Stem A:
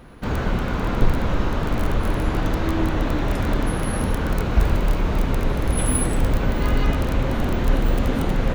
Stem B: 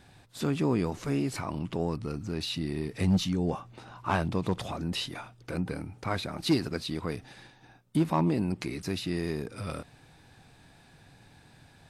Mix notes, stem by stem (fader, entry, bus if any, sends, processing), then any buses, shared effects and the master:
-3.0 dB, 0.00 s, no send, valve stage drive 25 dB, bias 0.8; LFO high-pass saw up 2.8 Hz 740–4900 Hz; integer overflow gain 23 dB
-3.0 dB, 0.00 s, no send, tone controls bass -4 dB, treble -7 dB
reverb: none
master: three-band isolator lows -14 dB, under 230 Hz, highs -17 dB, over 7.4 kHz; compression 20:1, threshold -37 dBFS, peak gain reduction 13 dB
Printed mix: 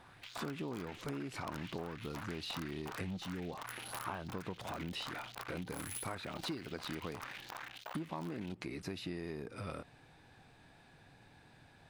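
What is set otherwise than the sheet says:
stem A -3.0 dB -> -9.5 dB; master: missing three-band isolator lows -14 dB, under 230 Hz, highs -17 dB, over 7.4 kHz

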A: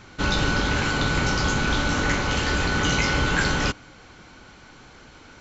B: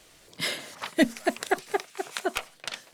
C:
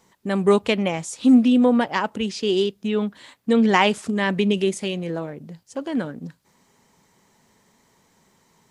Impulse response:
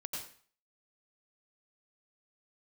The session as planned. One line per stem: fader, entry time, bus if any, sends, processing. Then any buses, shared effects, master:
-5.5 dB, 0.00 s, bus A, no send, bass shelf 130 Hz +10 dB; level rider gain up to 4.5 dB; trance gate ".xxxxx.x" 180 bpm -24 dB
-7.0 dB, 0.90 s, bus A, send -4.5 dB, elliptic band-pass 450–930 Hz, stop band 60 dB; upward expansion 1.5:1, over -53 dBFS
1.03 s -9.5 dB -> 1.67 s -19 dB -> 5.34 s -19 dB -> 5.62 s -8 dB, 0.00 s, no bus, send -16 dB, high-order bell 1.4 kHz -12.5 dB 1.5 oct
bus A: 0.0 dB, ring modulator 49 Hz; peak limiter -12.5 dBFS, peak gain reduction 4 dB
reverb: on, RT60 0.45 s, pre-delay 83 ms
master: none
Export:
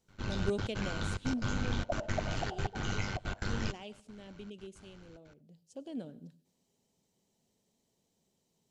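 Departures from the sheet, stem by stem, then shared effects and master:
stem A -5.5 dB -> -15.5 dB; stem C -9.5 dB -> -18.0 dB

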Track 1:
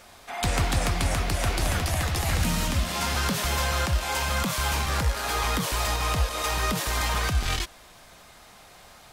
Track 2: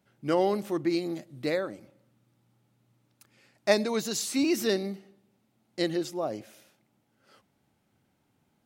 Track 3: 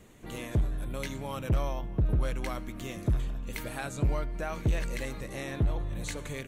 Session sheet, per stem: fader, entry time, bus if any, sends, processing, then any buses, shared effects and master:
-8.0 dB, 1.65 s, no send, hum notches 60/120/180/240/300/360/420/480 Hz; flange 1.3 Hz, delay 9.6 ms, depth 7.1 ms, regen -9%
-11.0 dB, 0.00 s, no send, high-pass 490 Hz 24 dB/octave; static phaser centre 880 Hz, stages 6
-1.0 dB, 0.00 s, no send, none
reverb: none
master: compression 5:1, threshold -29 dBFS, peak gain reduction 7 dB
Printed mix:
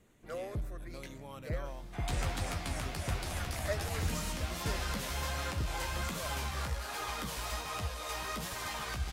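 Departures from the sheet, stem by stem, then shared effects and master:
stem 3 -1.0 dB -> -10.5 dB; master: missing compression 5:1, threshold -29 dBFS, peak gain reduction 7 dB

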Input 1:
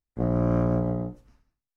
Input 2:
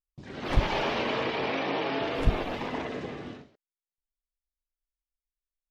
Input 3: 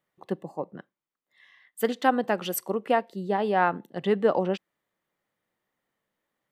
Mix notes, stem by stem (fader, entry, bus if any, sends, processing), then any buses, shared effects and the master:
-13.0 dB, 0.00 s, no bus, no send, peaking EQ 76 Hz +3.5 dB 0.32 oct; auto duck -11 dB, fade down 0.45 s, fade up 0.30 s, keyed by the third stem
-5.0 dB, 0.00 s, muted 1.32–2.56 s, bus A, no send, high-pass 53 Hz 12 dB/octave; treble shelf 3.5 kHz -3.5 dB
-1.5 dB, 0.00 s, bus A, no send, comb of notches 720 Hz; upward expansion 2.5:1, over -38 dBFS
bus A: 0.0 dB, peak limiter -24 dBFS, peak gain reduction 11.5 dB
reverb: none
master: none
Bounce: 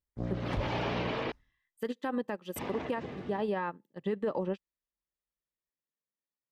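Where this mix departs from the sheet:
stem 1 -13.0 dB -> -6.5 dB; stem 3 -1.5 dB -> +9.0 dB; master: extra peaking EQ 72 Hz +4.5 dB 2.6 oct

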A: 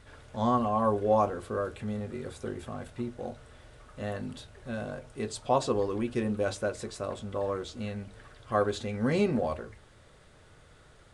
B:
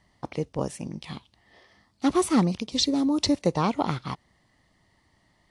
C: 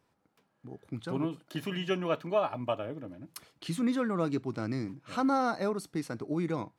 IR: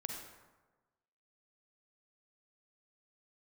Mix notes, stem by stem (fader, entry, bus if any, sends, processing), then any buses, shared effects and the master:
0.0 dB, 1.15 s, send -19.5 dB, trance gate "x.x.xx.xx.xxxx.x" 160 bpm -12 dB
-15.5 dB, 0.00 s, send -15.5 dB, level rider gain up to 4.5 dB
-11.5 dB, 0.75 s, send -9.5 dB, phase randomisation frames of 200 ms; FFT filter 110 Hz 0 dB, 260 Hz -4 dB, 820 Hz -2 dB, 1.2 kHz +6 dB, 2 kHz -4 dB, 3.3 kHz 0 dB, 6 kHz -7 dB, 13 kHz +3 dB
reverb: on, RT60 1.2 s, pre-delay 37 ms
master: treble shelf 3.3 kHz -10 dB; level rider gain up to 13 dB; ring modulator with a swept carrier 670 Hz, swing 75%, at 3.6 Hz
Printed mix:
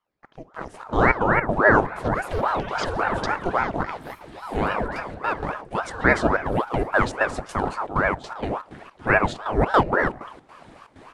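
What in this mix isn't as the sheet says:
stem A: entry 1.15 s -> 0.55 s; stem B: missing level rider gain up to 4.5 dB

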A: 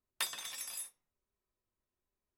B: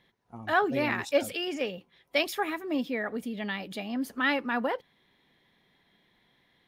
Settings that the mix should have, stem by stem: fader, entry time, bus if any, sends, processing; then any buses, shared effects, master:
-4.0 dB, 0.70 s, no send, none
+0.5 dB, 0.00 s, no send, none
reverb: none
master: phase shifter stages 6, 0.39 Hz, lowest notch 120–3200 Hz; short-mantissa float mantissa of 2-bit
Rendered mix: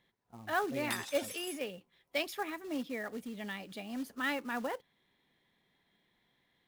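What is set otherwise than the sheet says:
stem B +0.5 dB -> -7.5 dB; master: missing phase shifter stages 6, 0.39 Hz, lowest notch 120–3200 Hz

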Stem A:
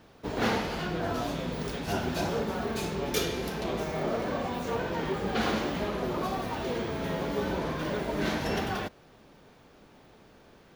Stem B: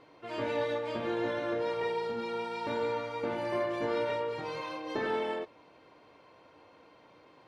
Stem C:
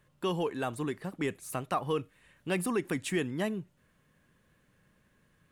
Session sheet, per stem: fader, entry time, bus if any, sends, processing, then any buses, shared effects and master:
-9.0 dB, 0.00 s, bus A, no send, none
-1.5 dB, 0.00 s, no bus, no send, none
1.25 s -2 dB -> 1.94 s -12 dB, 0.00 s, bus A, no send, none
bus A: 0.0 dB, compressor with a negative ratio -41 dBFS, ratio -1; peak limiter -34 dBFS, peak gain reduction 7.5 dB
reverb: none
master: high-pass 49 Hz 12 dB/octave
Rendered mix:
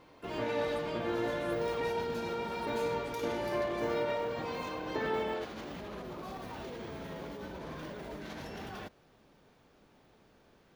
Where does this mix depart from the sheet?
stem C -2.0 dB -> -14.0 dB; master: missing high-pass 49 Hz 12 dB/octave

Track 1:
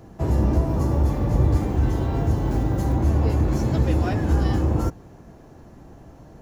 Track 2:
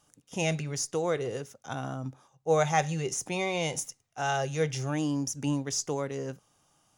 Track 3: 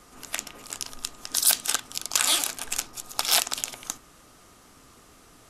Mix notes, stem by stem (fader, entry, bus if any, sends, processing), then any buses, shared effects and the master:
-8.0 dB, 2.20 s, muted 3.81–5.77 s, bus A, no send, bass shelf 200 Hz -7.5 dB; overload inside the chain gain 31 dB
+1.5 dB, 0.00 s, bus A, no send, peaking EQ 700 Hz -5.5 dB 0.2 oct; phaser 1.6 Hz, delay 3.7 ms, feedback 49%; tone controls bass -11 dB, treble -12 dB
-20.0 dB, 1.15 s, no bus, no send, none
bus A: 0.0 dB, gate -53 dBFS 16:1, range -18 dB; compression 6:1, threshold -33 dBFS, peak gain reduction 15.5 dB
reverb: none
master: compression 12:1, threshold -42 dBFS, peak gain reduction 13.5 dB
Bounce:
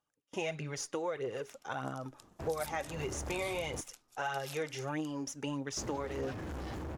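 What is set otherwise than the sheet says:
stem 3 -20.0 dB -> -27.0 dB; master: missing compression 12:1, threshold -42 dBFS, peak gain reduction 13.5 dB

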